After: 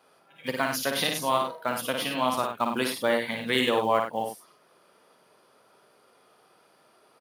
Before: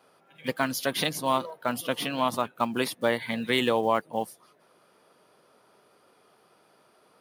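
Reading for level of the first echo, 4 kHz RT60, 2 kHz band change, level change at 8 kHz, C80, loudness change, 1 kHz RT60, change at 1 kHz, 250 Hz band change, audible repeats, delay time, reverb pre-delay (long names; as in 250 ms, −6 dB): −4.5 dB, no reverb audible, +1.5 dB, +1.5 dB, no reverb audible, +1.0 dB, no reverb audible, +1.0 dB, −1.0 dB, 2, 55 ms, no reverb audible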